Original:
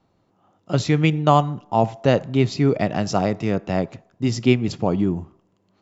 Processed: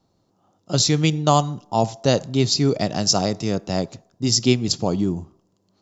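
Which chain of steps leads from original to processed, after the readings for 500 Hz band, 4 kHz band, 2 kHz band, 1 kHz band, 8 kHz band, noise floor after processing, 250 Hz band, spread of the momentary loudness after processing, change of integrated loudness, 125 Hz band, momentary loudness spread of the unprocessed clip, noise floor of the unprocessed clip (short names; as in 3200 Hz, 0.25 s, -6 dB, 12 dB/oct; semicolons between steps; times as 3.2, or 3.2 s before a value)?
-1.5 dB, +10.0 dB, -3.0 dB, -1.5 dB, n/a, -67 dBFS, -1.0 dB, 8 LU, +0.5 dB, -1.0 dB, 8 LU, -66 dBFS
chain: resonant high shelf 3400 Hz +13 dB, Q 1.5; mismatched tape noise reduction decoder only; gain -1 dB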